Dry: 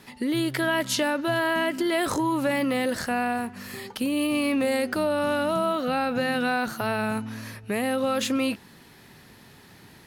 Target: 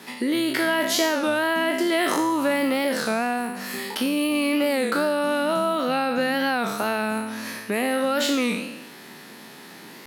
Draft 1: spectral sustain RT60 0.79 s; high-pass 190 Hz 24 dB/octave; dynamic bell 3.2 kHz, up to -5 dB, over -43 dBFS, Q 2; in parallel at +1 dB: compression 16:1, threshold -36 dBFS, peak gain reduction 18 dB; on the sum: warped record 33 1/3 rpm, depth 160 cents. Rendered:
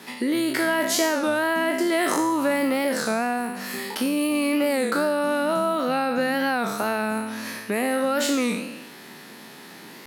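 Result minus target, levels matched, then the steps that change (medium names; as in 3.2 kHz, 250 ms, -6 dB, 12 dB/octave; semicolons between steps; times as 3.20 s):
4 kHz band -2.5 dB
change: dynamic bell 7.9 kHz, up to -5 dB, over -43 dBFS, Q 2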